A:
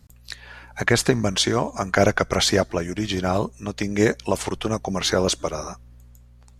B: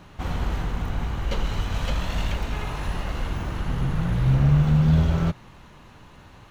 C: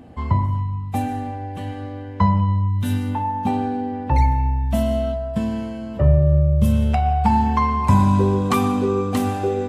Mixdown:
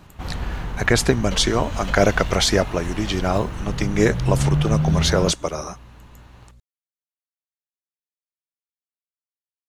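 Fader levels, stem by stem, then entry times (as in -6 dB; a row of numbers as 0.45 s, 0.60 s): +1.0 dB, -1.5 dB, mute; 0.00 s, 0.00 s, mute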